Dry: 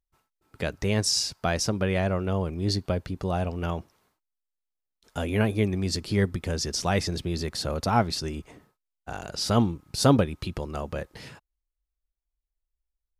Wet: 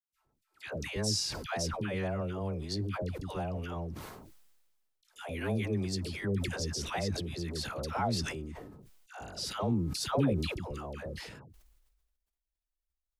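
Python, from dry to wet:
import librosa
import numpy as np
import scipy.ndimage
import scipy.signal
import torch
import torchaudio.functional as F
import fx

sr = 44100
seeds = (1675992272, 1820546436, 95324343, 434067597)

y = fx.dispersion(x, sr, late='lows', ms=136.0, hz=760.0)
y = fx.sustainer(y, sr, db_per_s=39.0)
y = F.gain(torch.from_numpy(y), -8.5).numpy()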